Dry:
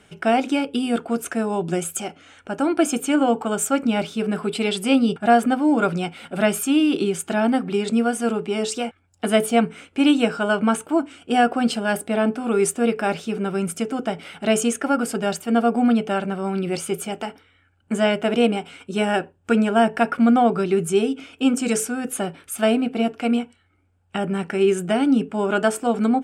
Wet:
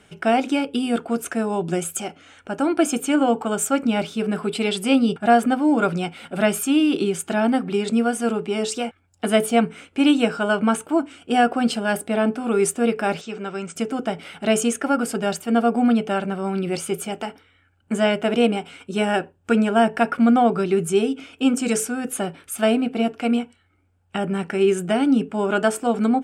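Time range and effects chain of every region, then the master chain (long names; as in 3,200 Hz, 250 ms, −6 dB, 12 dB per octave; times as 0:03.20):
0:13.21–0:13.76: Chebyshev low-pass filter 8,000 Hz, order 6 + low-shelf EQ 330 Hz −10 dB
whole clip: no processing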